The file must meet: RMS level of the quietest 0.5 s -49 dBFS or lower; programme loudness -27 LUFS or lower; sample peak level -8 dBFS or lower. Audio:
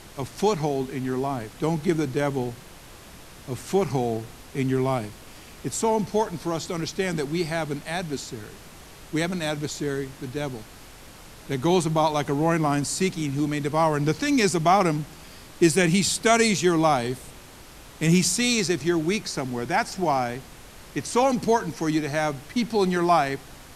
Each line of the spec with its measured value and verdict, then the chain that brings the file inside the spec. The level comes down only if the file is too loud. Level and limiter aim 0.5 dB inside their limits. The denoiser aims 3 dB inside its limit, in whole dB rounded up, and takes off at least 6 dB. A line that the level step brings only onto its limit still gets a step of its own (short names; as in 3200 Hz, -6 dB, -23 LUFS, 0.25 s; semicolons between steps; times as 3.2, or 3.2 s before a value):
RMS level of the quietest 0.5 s -45 dBFS: fail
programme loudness -24.5 LUFS: fail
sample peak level -5.0 dBFS: fail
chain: denoiser 6 dB, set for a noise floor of -45 dBFS; gain -3 dB; limiter -8.5 dBFS